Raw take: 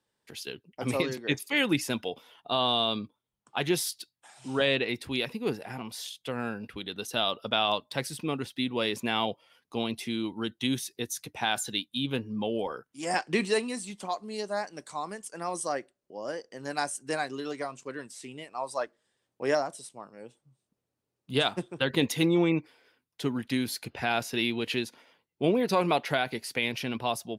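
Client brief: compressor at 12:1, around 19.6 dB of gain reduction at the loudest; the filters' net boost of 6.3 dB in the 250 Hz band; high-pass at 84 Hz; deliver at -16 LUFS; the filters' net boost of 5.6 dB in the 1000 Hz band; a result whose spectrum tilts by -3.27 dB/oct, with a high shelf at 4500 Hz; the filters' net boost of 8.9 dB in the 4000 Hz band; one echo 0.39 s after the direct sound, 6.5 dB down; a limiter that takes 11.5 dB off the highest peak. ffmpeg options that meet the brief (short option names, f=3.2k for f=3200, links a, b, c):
-af "highpass=84,equalizer=f=250:t=o:g=7.5,equalizer=f=1k:t=o:g=6.5,equalizer=f=4k:t=o:g=8.5,highshelf=f=4.5k:g=4,acompressor=threshold=-35dB:ratio=12,alimiter=level_in=6.5dB:limit=-24dB:level=0:latency=1,volume=-6.5dB,aecho=1:1:390:0.473,volume=25.5dB"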